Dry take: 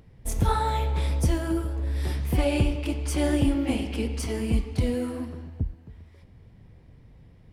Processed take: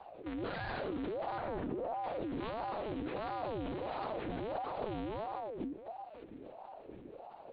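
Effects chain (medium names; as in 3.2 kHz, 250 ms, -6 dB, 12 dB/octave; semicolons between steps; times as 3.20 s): dead-time distortion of 0.24 ms; 1.37–2.05 s: low-pass 1.8 kHz 12 dB/octave; valve stage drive 38 dB, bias 0.25; wavefolder -36.5 dBFS; monotone LPC vocoder at 8 kHz 220 Hz; ring modulator with a swept carrier 530 Hz, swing 50%, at 1.5 Hz; trim +4 dB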